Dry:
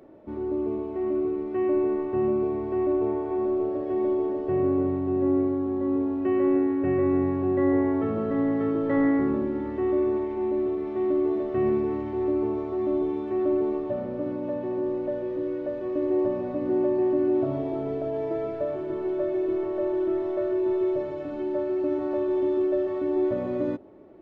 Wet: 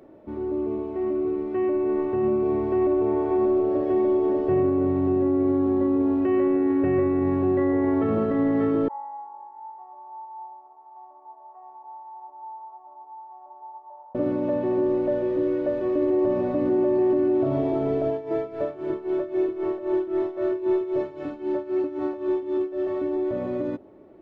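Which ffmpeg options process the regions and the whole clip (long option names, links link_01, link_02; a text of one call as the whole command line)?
ffmpeg -i in.wav -filter_complex "[0:a]asettb=1/sr,asplit=3[link_01][link_02][link_03];[link_01]atrim=end=8.884[link_04];[link_02]atrim=start=8.88:end=14.15,asetpts=PTS-STARTPTS,afade=type=in:duration=0.004:curve=qsin,afade=type=out:start_time=5.266:duration=0.004:curve=qsin,asuperpass=centerf=870:order=4:qfactor=6,aemphasis=mode=production:type=bsi,aecho=1:1:500:0.211,atrim=end_sample=232407[link_05];[link_03]atrim=start=14.146[link_06];[link_04][link_05]acrossfade=duration=0.004:curve1=hsin:curve2=qsin[link_07];[link_07][link_06]acrossfade=duration=0.004:curve1=qsin:curve2=hsin,asettb=1/sr,asplit=3[link_08][link_09][link_10];[link_08]atrim=end=18.104[link_11];[link_09]atrim=start=18.1:end=22.87,asetpts=PTS-STARTPTS,afade=type=in:duration=0.004:curve=qsin,afade=type=out:start_time=4.766:duration=0.004:curve=qsin,lowshelf=frequency=150:gain=-5,bandreject=frequency=610:width=9.5,tremolo=f=3.8:d=0.8[link_12];[link_10]atrim=start=22.866[link_13];[link_11][link_12]acrossfade=duration=0.004:curve1=hsin:curve2=qsin[link_14];[link_14][link_13]acrossfade=duration=0.004:curve1=qsin:curve2=hsin,alimiter=limit=-20.5dB:level=0:latency=1:release=34,dynaudnorm=framelen=130:gausssize=31:maxgain=4.5dB,volume=1dB" out.wav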